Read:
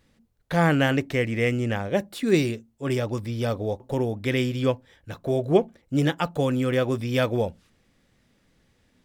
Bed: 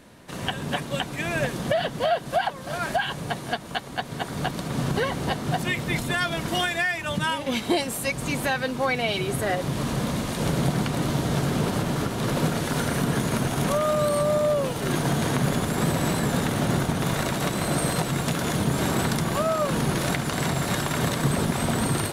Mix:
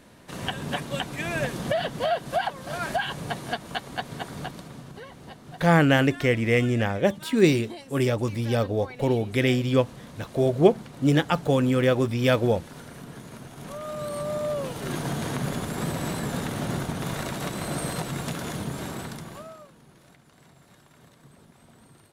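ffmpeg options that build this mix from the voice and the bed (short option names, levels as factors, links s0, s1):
-filter_complex "[0:a]adelay=5100,volume=1.26[s0];[1:a]volume=3.16,afade=t=out:st=3.98:d=0.85:silence=0.16788,afade=t=in:st=13.56:d=1.01:silence=0.251189,afade=t=out:st=18.25:d=1.48:silence=0.0595662[s1];[s0][s1]amix=inputs=2:normalize=0"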